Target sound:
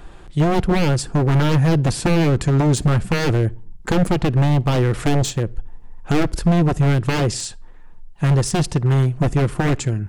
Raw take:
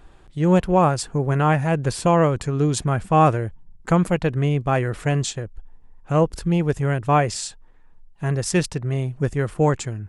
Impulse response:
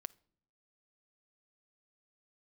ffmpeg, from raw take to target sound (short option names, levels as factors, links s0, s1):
-filter_complex "[0:a]asettb=1/sr,asplit=3[s0][s1][s2];[s0]atrim=end=5.054[s3];[s1]atrim=start=5.05:end=6.38,asetpts=PTS-STARTPTS,afade=t=in:d=0.004:c=qsin,afade=t=out:st=1.326:d=0.004:c=qsin,aeval=exprs='0.422*(cos(1*acos(clip(val(0)/0.422,-1,1)))-cos(1*PI/2))+0.0668*(cos(2*acos(clip(val(0)/0.422,-1,1)))-cos(2*PI/2))+0.0841*(cos(4*acos(clip(val(0)/0.422,-1,1)))-cos(4*PI/2))+0.0376*(cos(5*acos(clip(val(0)/0.422,-1,1)))-cos(5*PI/2))+0.0188*(cos(7*acos(clip(val(0)/0.422,-1,1)))-cos(7*PI/2))':c=same[s4];[s2]atrim=start=6.376[s5];[s3][s4]acrossfade=d=0.004:c1=hsin:c2=qsin[s6];[s6][s5]acrossfade=d=0.004:c1=qsin:c2=hsin,aeval=exprs='0.126*(abs(mod(val(0)/0.126+3,4)-2)-1)':c=same,acrossover=split=470[s7][s8];[s8]acompressor=threshold=0.0158:ratio=2.5[s9];[s7][s9]amix=inputs=2:normalize=0,asplit=2[s10][s11];[1:a]atrim=start_sample=2205,afade=t=out:st=0.31:d=0.01,atrim=end_sample=14112[s12];[s11][s12]afir=irnorm=-1:irlink=0,volume=3.76[s13];[s10][s13]amix=inputs=2:normalize=0,volume=0.841"